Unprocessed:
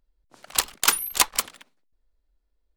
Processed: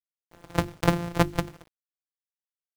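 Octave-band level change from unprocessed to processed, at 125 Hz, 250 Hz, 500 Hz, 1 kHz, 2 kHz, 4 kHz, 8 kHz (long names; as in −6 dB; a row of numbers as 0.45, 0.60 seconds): +25.0, +18.0, +11.5, −1.5, −5.0, −12.5, −20.0 decibels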